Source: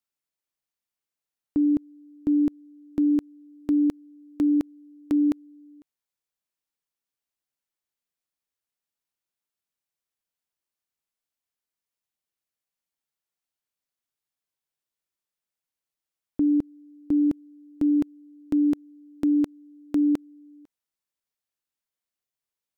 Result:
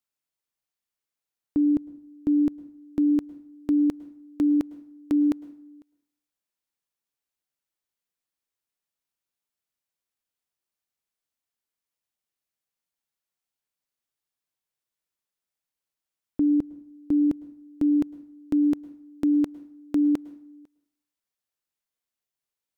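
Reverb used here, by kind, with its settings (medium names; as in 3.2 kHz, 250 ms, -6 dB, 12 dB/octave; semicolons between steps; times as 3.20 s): plate-style reverb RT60 0.61 s, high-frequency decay 0.75×, pre-delay 95 ms, DRR 19 dB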